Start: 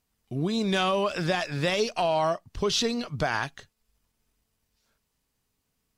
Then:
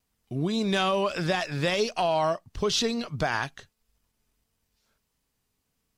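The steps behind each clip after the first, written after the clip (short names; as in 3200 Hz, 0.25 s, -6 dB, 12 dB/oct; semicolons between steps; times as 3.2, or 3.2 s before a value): vibrato 1.6 Hz 30 cents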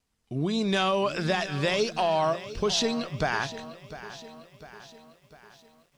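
LPF 9700 Hz 12 dB/oct; de-hum 57.16 Hz, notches 3; lo-fi delay 0.701 s, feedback 55%, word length 9-bit, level -14.5 dB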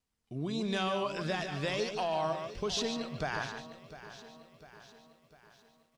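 outdoor echo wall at 25 m, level -7 dB; gain -8 dB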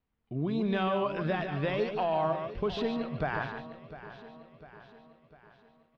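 air absorption 430 m; gain +5 dB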